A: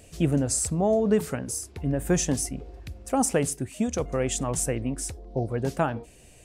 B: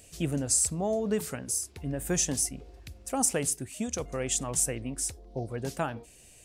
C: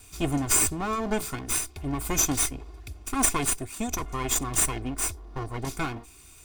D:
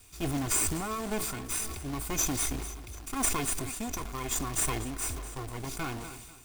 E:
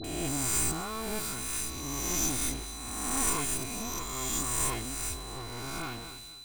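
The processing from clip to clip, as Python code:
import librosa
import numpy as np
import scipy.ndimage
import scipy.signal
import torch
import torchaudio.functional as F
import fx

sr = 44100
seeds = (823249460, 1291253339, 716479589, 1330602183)

y1 = fx.high_shelf(x, sr, hz=2400.0, db=9.5)
y1 = y1 * 10.0 ** (-7.0 / 20.0)
y2 = fx.lower_of_two(y1, sr, delay_ms=0.83)
y2 = y2 + 0.55 * np.pad(y2, (int(2.8 * sr / 1000.0), 0))[:len(y2)]
y2 = y2 * 10.0 ** (4.0 / 20.0)
y3 = fx.quant_companded(y2, sr, bits=4)
y3 = fx.echo_feedback(y3, sr, ms=246, feedback_pct=59, wet_db=-20.0)
y3 = fx.sustainer(y3, sr, db_per_s=37.0)
y3 = y3 * 10.0 ** (-6.5 / 20.0)
y4 = fx.spec_swells(y3, sr, rise_s=1.68)
y4 = fx.dispersion(y4, sr, late='highs', ms=43.0, hz=1100.0)
y4 = y4 + 10.0 ** (-41.0 / 20.0) * np.sin(2.0 * np.pi * 4000.0 * np.arange(len(y4)) / sr)
y4 = y4 * 10.0 ** (-5.0 / 20.0)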